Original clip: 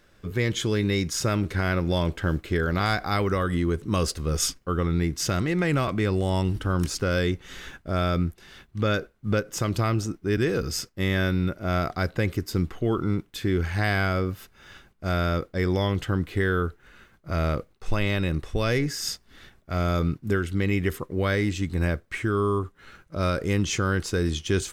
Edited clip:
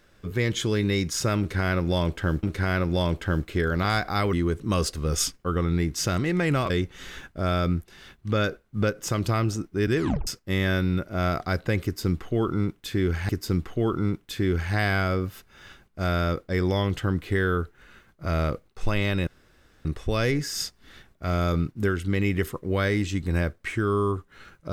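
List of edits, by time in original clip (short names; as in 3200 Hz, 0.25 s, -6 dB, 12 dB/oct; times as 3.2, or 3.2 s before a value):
1.39–2.43 loop, 2 plays
3.29–3.55 cut
5.92–7.2 cut
10.47 tape stop 0.30 s
12.34–13.79 loop, 2 plays
18.32 insert room tone 0.58 s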